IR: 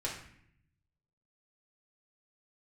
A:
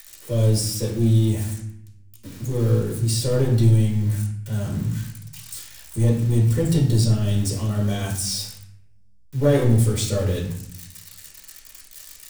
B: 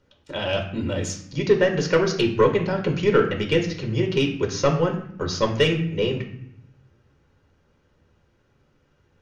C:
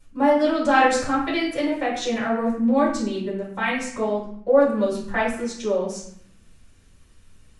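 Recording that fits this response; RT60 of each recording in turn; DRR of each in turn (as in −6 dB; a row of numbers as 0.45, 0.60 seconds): A; 0.65, 0.65, 0.65 seconds; −4.5, 2.0, −10.0 decibels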